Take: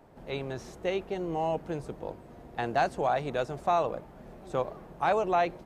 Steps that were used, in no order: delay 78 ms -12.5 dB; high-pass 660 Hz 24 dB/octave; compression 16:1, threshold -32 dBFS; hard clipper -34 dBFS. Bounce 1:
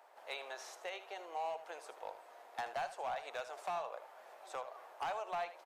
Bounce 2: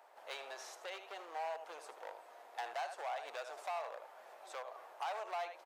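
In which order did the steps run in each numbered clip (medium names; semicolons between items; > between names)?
compression > high-pass > hard clipper > delay; delay > compression > hard clipper > high-pass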